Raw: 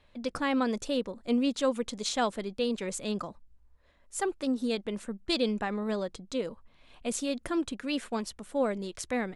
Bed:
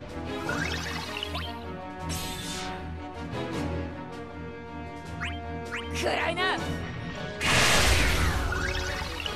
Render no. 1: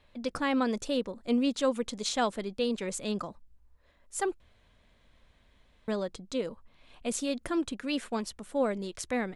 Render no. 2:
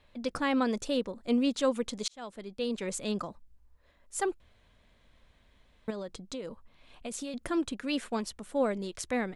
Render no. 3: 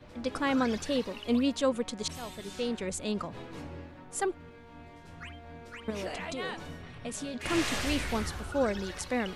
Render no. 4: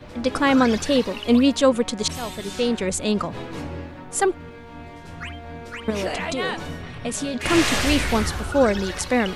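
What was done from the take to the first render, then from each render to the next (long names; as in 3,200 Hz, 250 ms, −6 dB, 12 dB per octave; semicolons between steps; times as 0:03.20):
0:04.40–0:05.88: fill with room tone
0:02.08–0:02.89: fade in; 0:05.90–0:07.34: downward compressor, threshold −34 dBFS
mix in bed −11.5 dB
level +10.5 dB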